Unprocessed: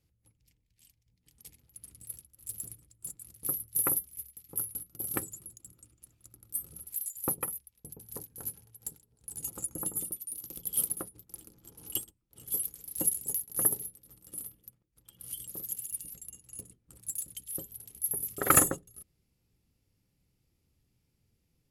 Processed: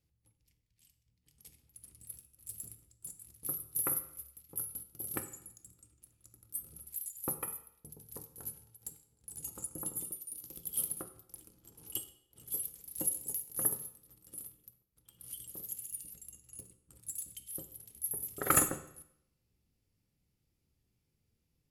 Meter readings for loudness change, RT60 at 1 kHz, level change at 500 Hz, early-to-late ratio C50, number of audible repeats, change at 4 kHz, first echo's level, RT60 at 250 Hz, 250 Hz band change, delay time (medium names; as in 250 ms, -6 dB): -4.5 dB, 0.70 s, -4.5 dB, 12.5 dB, no echo, -4.5 dB, no echo, 0.80 s, -4.5 dB, no echo